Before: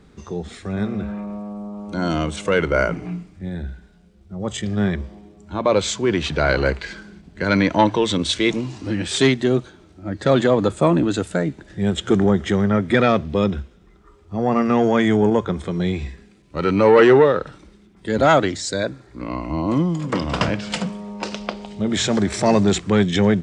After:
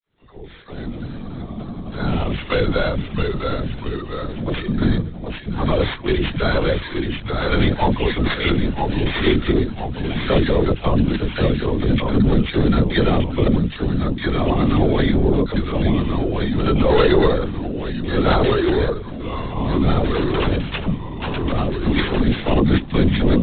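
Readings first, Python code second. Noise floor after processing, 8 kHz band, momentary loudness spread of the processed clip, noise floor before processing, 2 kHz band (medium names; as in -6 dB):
-33 dBFS, under -40 dB, 10 LU, -51 dBFS, -1.0 dB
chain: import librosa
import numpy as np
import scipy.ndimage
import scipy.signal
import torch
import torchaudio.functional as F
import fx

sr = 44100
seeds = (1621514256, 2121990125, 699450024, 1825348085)

y = fx.fade_in_head(x, sr, length_s=2.34)
y = fx.dynamic_eq(y, sr, hz=170.0, q=0.87, threshold_db=-29.0, ratio=4.0, max_db=6)
y = fx.notch_comb(y, sr, f0_hz=310.0)
y = fx.dispersion(y, sr, late='lows', ms=53.0, hz=960.0)
y = fx.echo_pitch(y, sr, ms=511, semitones=-1, count=3, db_per_echo=-6.0)
y = (np.kron(y[::8], np.eye(8)[0]) * 8)[:len(y)]
y = fx.lpc_vocoder(y, sr, seeds[0], excitation='whisper', order=16)
y = fx.band_squash(y, sr, depth_pct=40)
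y = y * 10.0 ** (-2.0 / 20.0)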